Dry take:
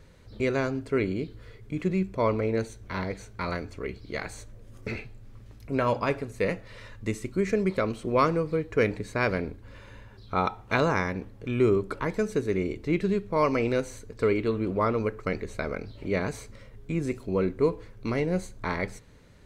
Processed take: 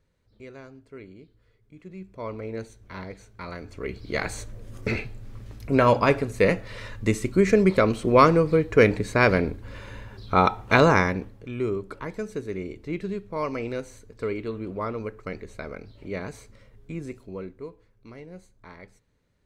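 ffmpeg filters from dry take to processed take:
-af "volume=2.24,afade=t=in:st=1.85:d=0.74:silence=0.281838,afade=t=in:st=3.55:d=0.74:silence=0.223872,afade=t=out:st=10.96:d=0.52:silence=0.251189,afade=t=out:st=16.91:d=0.78:silence=0.281838"

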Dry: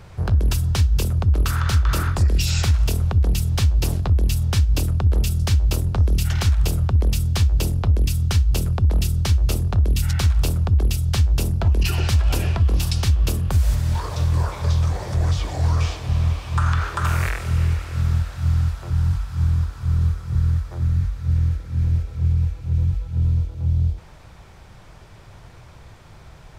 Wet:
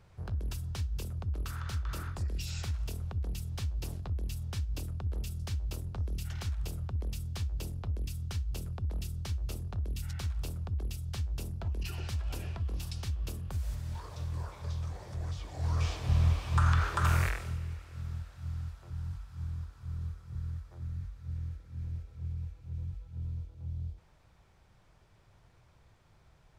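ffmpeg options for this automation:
-af "volume=0.501,afade=t=in:st=15.51:d=0.6:silence=0.281838,afade=t=out:st=17.16:d=0.44:silence=0.237137"

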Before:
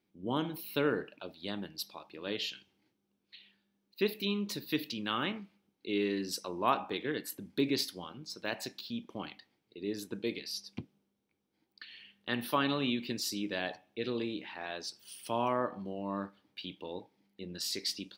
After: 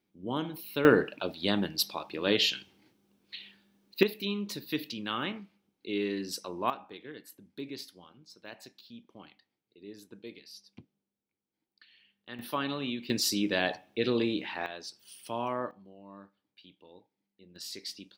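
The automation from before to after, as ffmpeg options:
-af "asetnsamples=n=441:p=0,asendcmd='0.85 volume volume 10.5dB;4.03 volume volume 0dB;6.7 volume volume -10dB;12.39 volume volume -2.5dB;13.1 volume volume 7dB;14.66 volume volume -2dB;15.71 volume volume -13dB;17.56 volume volume -5.5dB',volume=1"

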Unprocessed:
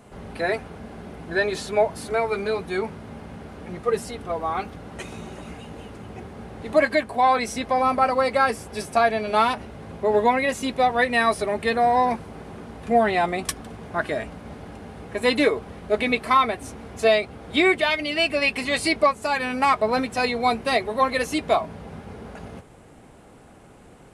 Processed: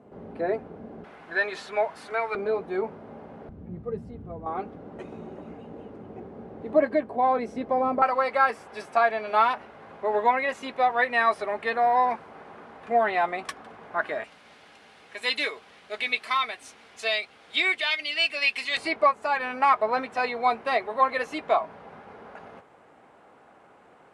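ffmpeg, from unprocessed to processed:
-af "asetnsamples=n=441:p=0,asendcmd='1.04 bandpass f 1500;2.35 bandpass f 560;3.49 bandpass f 120;4.46 bandpass f 390;8.02 bandpass f 1200;14.24 bandpass f 3400;18.77 bandpass f 1100',bandpass=f=370:t=q:w=0.82:csg=0"

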